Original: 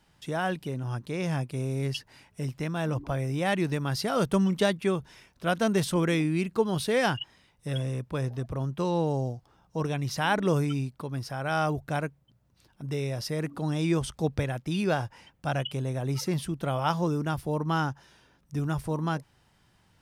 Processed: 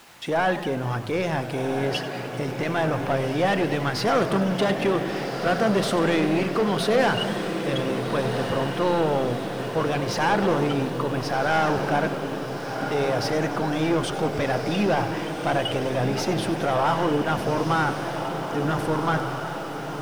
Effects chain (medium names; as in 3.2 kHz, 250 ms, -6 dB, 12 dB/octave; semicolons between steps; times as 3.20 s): saturation -27 dBFS, distortion -10 dB; in parallel at -8 dB: word length cut 8-bit, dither triangular; on the sum: overdrive pedal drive 21 dB, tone 1.6 kHz, clips at -11 dBFS; echo that smears into a reverb 1494 ms, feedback 62%, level -7 dB; on a send at -13.5 dB: reverberation RT60 0.85 s, pre-delay 3 ms; on the sum: modulated delay 98 ms, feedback 76%, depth 216 cents, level -14.5 dB